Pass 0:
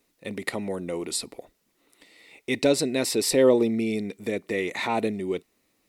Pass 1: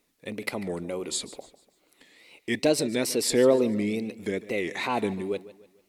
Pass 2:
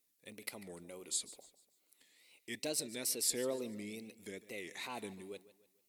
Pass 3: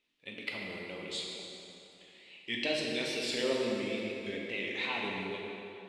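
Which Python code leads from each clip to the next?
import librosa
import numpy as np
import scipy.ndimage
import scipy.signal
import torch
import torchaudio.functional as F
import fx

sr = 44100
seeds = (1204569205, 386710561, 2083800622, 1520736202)

y1 = fx.wow_flutter(x, sr, seeds[0], rate_hz=2.1, depth_cents=150.0)
y1 = fx.echo_warbled(y1, sr, ms=147, feedback_pct=40, rate_hz=2.8, cents=96, wet_db=-17.0)
y1 = F.gain(torch.from_numpy(y1), -1.5).numpy()
y2 = scipy.signal.lfilter([1.0, -0.8], [1.0], y1)
y2 = F.gain(torch.from_numpy(y2), -4.5).numpy()
y3 = fx.lowpass_res(y2, sr, hz=3000.0, q=2.9)
y3 = fx.rev_plate(y3, sr, seeds[1], rt60_s=3.0, hf_ratio=0.75, predelay_ms=0, drr_db=-2.5)
y3 = F.gain(torch.from_numpy(y3), 3.0).numpy()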